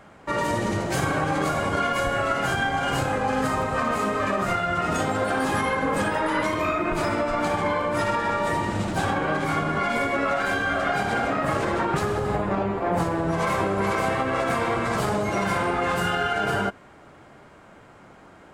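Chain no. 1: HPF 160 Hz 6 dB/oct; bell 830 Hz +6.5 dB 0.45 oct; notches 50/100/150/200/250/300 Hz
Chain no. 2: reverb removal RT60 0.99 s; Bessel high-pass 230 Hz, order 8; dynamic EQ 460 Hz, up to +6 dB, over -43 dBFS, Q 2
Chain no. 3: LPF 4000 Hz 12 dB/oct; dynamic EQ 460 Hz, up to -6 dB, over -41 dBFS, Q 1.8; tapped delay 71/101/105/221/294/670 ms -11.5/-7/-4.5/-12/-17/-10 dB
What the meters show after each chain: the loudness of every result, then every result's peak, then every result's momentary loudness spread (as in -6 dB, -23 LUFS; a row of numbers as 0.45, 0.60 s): -23.0, -26.0, -23.5 LUFS; -8.5, -11.5, -10.0 dBFS; 2, 2, 3 LU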